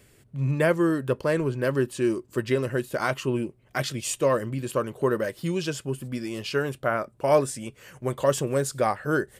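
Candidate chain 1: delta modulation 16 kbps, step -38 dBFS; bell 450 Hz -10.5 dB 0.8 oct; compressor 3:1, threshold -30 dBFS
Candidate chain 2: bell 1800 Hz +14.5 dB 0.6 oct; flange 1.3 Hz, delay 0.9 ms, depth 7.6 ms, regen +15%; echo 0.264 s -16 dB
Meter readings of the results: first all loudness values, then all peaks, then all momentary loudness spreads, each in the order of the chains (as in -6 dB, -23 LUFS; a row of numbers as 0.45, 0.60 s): -35.5, -27.0 LUFS; -20.0, -9.5 dBFS; 4, 10 LU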